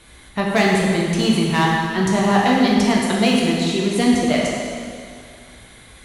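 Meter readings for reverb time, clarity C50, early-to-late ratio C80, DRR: 2.2 s, -0.5 dB, 1.0 dB, -3.0 dB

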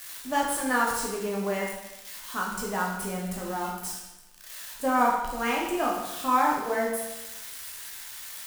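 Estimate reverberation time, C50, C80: 1.0 s, 2.5 dB, 5.0 dB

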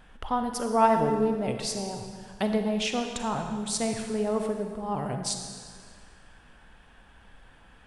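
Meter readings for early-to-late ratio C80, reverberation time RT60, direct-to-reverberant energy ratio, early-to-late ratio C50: 6.5 dB, 1.9 s, 4.5 dB, 5.5 dB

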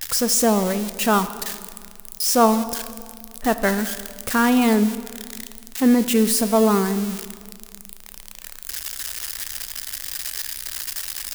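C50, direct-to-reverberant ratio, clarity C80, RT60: 12.5 dB, 11.0 dB, 13.5 dB, 1.9 s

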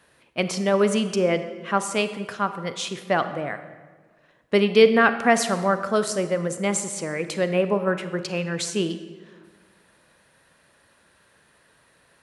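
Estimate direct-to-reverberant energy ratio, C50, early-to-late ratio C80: 10.0 dB, 11.0 dB, 12.5 dB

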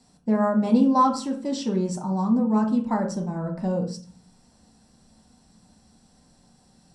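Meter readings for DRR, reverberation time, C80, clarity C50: -0.5 dB, 0.40 s, 13.5 dB, 9.0 dB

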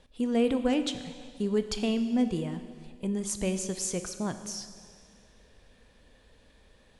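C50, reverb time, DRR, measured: 10.0 dB, 2.1 s, 9.0 dB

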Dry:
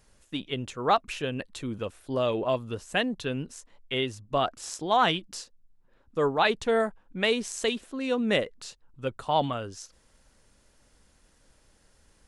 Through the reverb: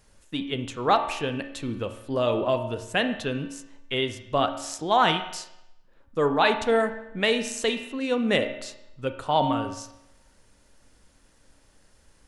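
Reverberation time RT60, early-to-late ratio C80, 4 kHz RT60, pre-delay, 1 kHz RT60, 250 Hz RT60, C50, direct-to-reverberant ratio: 0.85 s, 11.5 dB, 0.80 s, 27 ms, 0.85 s, 0.85 s, 9.0 dB, 7.0 dB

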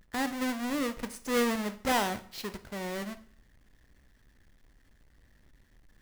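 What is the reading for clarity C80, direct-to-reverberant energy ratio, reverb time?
19.0 dB, 10.5 dB, 0.55 s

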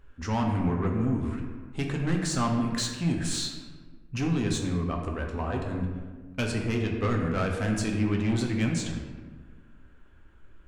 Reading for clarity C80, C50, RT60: 5.5 dB, 4.0 dB, 1.4 s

